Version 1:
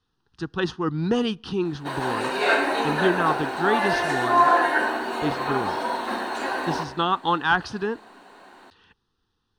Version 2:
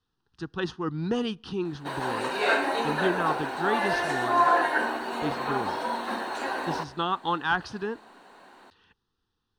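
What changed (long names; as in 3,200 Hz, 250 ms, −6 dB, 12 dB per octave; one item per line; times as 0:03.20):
speech −5.0 dB
background: send −10.5 dB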